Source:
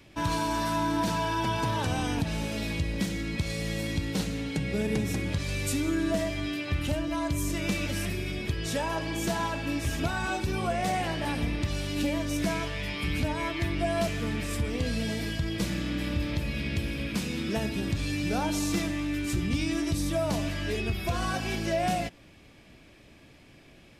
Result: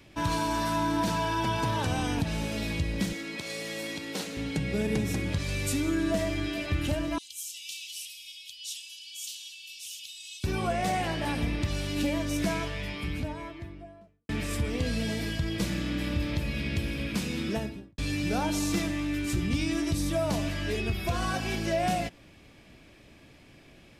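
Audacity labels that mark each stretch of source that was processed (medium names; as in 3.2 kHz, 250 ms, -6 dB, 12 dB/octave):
3.130000	4.370000	high-pass 330 Hz
5.750000	6.230000	echo throw 430 ms, feedback 75%, level -12.5 dB
7.180000	10.440000	elliptic high-pass 2.9 kHz, stop band 50 dB
12.440000	14.290000	studio fade out
17.440000	17.980000	studio fade out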